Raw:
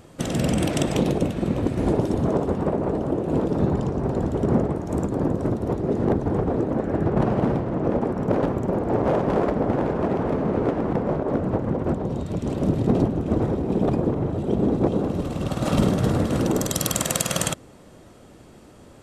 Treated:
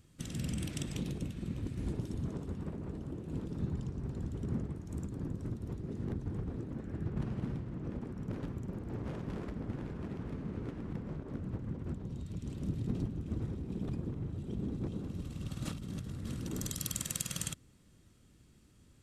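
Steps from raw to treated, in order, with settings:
guitar amp tone stack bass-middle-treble 6-0-2
0:15.65–0:16.79: compressor whose output falls as the input rises −42 dBFS, ratio −1
level +2.5 dB

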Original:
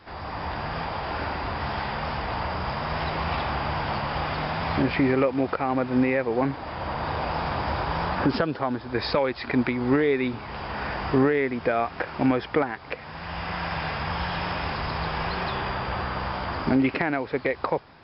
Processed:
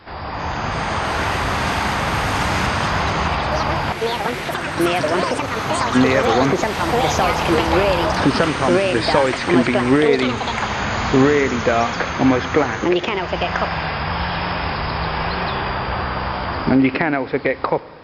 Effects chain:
spring reverb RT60 1.7 s, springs 34/59 ms, DRR 18 dB
0:03.92–0:05.95: output level in coarse steps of 19 dB
delay with pitch and tempo change per echo 339 ms, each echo +5 semitones, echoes 3
level +6.5 dB

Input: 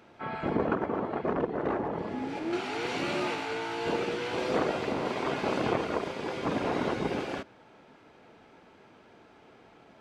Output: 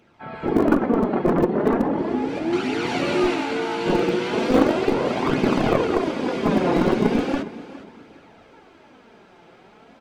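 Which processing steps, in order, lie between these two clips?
dynamic equaliser 250 Hz, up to +8 dB, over −45 dBFS, Q 0.92
flanger 0.37 Hz, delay 0.3 ms, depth 5.7 ms, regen +32%
hum removal 100.4 Hz, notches 29
on a send: repeating echo 411 ms, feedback 31%, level −16 dB
on the sum: automatic gain control gain up to 7.5 dB
in parallel at −7.5 dB: comparator with hysteresis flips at −14 dBFS
on the sum: level +2.5 dB

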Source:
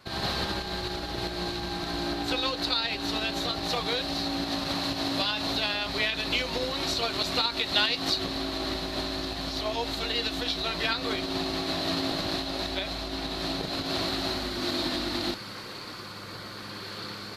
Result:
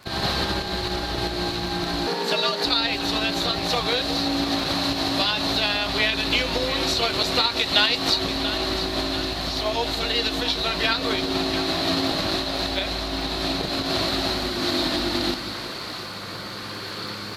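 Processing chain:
echo with a time of its own for lows and highs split 610 Hz, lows 182 ms, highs 689 ms, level −11 dB
surface crackle 18 per second −38 dBFS
0:02.07–0:02.65: frequency shifter +120 Hz
level +5.5 dB

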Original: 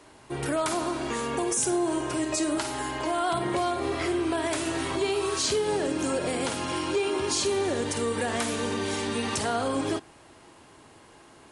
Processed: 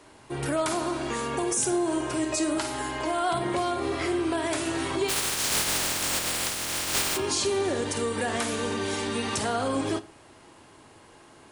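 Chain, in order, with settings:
0:05.08–0:07.16: compressing power law on the bin magnitudes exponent 0.13
on a send: convolution reverb RT60 0.40 s, pre-delay 7 ms, DRR 13 dB

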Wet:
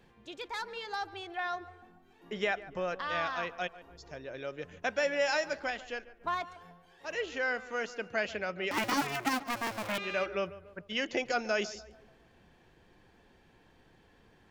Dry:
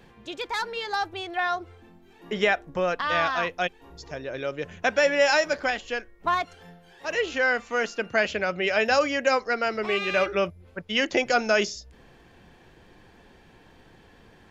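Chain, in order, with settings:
0:08.71–0:09.98: sub-harmonics by changed cycles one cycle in 2, inverted
on a send: tape delay 144 ms, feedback 51%, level −15 dB, low-pass 1,900 Hz
on the sum: level −9 dB

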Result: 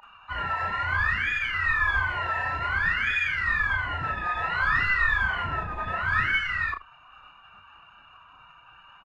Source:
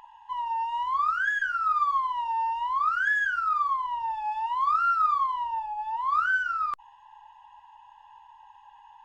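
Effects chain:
low-pass filter 2,000 Hz 12 dB per octave
phase-vocoder pitch shift with formants kept +6.5 semitones
ambience of single reflections 33 ms −4.5 dB, 78 ms −16.5 dB

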